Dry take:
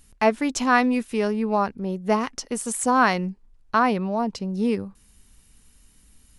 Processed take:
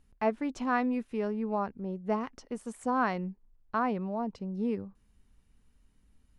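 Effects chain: low-pass 1.3 kHz 6 dB/octave; trim -8 dB

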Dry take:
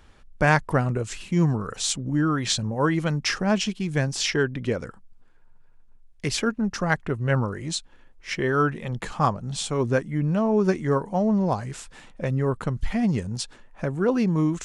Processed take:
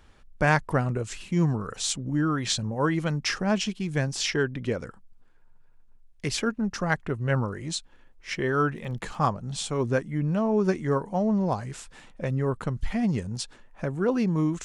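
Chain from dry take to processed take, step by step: 8.76–9.21 s: crackle 68 per s -> 15 per s -39 dBFS; trim -2.5 dB

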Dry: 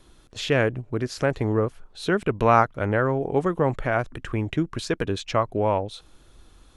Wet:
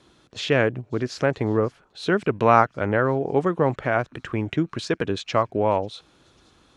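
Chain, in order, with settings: band-pass 110–6600 Hz; feedback echo behind a high-pass 542 ms, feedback 72%, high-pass 5 kHz, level -23 dB; trim +1.5 dB

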